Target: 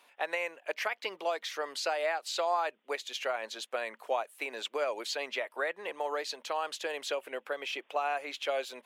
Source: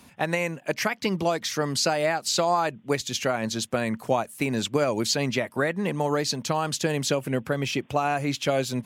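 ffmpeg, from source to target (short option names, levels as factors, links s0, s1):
-af "highpass=f=460:w=0.5412,highpass=f=460:w=1.3066,highshelf=f=4300:t=q:w=1.5:g=-6,volume=0.473"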